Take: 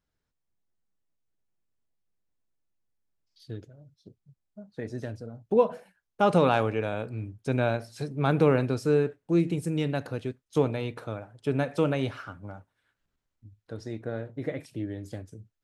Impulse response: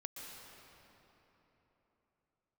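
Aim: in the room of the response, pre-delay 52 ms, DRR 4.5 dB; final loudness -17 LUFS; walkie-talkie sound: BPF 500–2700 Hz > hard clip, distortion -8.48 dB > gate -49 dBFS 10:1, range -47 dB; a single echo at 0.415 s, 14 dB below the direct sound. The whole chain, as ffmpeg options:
-filter_complex "[0:a]aecho=1:1:415:0.2,asplit=2[a][b];[1:a]atrim=start_sample=2205,adelay=52[c];[b][c]afir=irnorm=-1:irlink=0,volume=-2dB[d];[a][d]amix=inputs=2:normalize=0,highpass=500,lowpass=2.7k,asoftclip=type=hard:threshold=-25.5dB,agate=range=-47dB:threshold=-49dB:ratio=10,volume=16.5dB"

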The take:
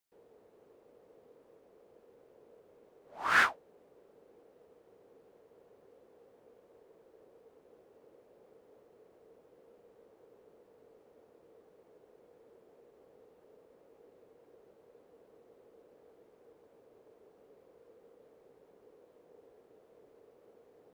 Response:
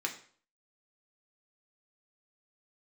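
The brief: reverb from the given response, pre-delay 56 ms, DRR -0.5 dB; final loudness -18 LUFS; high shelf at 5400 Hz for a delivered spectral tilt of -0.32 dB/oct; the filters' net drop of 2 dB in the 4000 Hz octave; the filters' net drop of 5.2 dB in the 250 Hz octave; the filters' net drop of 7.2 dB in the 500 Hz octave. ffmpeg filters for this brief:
-filter_complex "[0:a]equalizer=f=250:t=o:g=-4,equalizer=f=500:t=o:g=-8,equalizer=f=4k:t=o:g=-5,highshelf=f=5.4k:g=6,asplit=2[a][b];[1:a]atrim=start_sample=2205,adelay=56[c];[b][c]afir=irnorm=-1:irlink=0,volume=-3.5dB[d];[a][d]amix=inputs=2:normalize=0,volume=9dB"

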